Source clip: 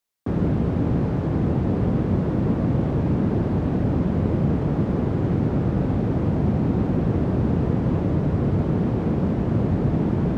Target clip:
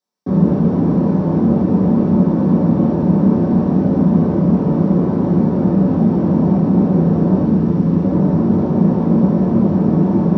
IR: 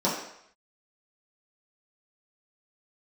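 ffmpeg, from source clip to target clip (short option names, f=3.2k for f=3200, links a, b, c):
-filter_complex "[0:a]asettb=1/sr,asplit=3[a][b][c];[a]atrim=end=7.444[d];[b]atrim=start=7.44:end=8.04,asetpts=PTS-STARTPTS,afade=t=in:d=0.004:c=qsin,afade=t=out:st=0.596:d=0.004:c=qsin,equalizer=f=710:t=o:w=1.4:g=-6[e];[c]atrim=start=8.036[f];[d][e]acrossfade=d=0.004:c1=hsin:c2=qsin[g];[g][f]acrossfade=d=0.004:c1=qsin:c2=hsin[h];[1:a]atrim=start_sample=2205[i];[h][i]afir=irnorm=-1:irlink=0,volume=-9.5dB"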